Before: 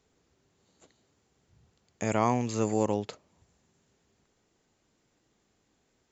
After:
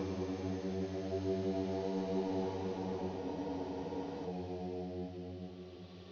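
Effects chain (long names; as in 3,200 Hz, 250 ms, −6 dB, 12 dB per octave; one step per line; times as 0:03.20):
variable-slope delta modulation 32 kbit/s
source passing by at 0:01.66, 48 m/s, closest 2.7 metres
extreme stretch with random phases 13×, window 0.25 s, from 0:02.50
frozen spectrum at 0:03.22, 1.05 s
level +14 dB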